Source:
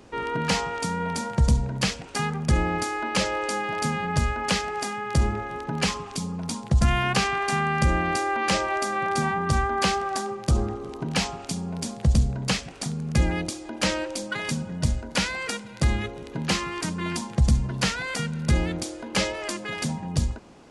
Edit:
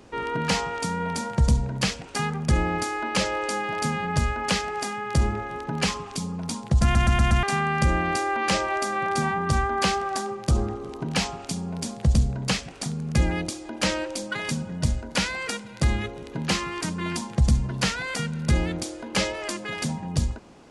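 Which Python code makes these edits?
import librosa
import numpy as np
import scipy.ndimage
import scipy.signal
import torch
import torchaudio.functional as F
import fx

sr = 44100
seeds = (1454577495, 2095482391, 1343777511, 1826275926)

y = fx.edit(x, sr, fx.stutter_over(start_s=6.83, slice_s=0.12, count=5), tone=tone)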